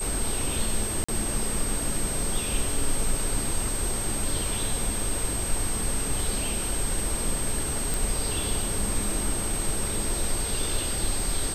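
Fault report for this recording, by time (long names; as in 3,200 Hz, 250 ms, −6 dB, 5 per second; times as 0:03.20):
whistle 8,300 Hz −30 dBFS
0:01.04–0:01.08: drop-out 45 ms
0:07.94: click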